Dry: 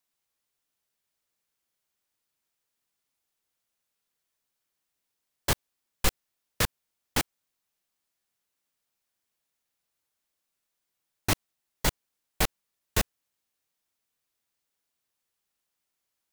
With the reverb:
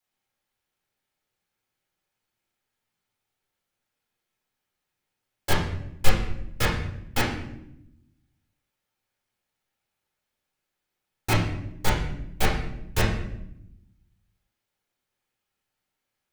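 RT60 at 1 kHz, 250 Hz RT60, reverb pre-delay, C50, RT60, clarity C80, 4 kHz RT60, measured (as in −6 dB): 0.70 s, 1.4 s, 4 ms, 4.5 dB, 0.80 s, 7.5 dB, 0.60 s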